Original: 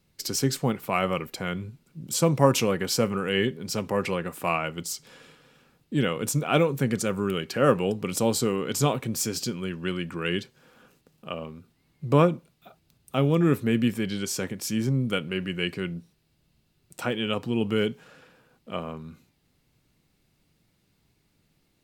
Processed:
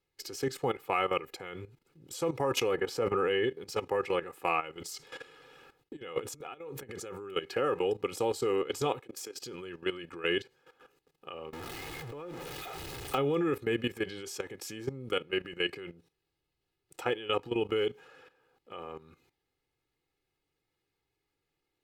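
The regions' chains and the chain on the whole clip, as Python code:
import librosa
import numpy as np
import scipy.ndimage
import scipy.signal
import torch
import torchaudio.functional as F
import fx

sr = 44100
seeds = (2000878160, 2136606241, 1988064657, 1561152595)

y = fx.chain(x, sr, fx.high_shelf(hz=2100.0, db=-8.0),
    fx.sustainer(db_per_s=28.0), at=(2.75, 3.47))
y = fx.chain(y, sr, fx.gate_hold(open_db=-53.0, close_db=-55.0, hold_ms=71.0, range_db=-21, attack_ms=1.4, release_ms=100.0),
    fx.over_compress(threshold_db=-34.0, ratio=-1.0), at=(4.77, 7.36))
y = fx.chain(y, sr, fx.highpass(hz=260.0, slope=12),
    fx.level_steps(step_db=16), at=(9.0, 9.42))
y = fx.chain(y, sr, fx.zero_step(step_db=-31.0),
    fx.over_compress(threshold_db=-28.0, ratio=-1.0), at=(11.53, 13.18))
y = fx.bass_treble(y, sr, bass_db=-9, treble_db=-7)
y = y + 0.66 * np.pad(y, (int(2.4 * sr / 1000.0), 0))[:len(y)]
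y = fx.level_steps(y, sr, step_db=14)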